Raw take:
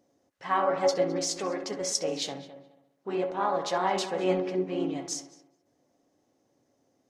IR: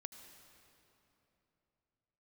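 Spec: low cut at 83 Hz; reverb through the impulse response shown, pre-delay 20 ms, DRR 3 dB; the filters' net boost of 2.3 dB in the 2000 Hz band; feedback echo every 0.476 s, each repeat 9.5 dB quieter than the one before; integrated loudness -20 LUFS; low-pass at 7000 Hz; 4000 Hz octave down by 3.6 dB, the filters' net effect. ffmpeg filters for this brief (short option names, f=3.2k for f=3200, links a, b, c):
-filter_complex "[0:a]highpass=83,lowpass=7k,equalizer=f=2k:t=o:g=4,equalizer=f=4k:t=o:g=-5,aecho=1:1:476|952|1428|1904:0.335|0.111|0.0365|0.012,asplit=2[a][b];[1:a]atrim=start_sample=2205,adelay=20[c];[b][c]afir=irnorm=-1:irlink=0,volume=1.5dB[d];[a][d]amix=inputs=2:normalize=0,volume=7.5dB"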